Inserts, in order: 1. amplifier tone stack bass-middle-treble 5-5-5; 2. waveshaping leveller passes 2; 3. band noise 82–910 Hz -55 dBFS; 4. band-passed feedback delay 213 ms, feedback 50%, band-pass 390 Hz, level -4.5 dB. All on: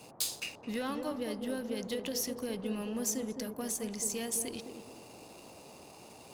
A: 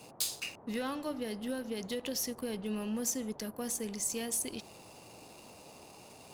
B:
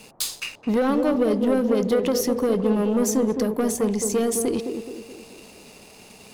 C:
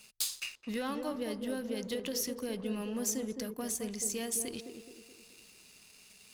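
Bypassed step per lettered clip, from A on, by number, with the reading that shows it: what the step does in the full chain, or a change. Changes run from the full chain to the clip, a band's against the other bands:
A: 4, echo-to-direct -9.5 dB to none; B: 1, 8 kHz band -8.5 dB; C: 3, momentary loudness spread change +3 LU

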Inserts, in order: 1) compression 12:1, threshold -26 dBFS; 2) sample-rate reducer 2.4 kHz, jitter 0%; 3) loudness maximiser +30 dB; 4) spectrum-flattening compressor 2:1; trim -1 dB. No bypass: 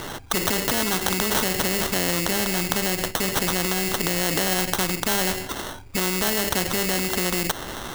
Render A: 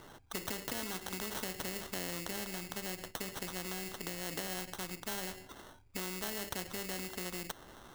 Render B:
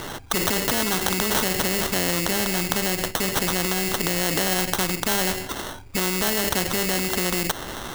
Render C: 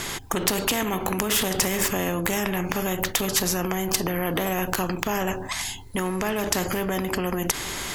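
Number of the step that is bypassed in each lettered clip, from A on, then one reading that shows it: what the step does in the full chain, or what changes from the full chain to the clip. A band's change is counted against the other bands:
3, loudness change -17.0 LU; 1, mean gain reduction 2.0 dB; 2, distortion -4 dB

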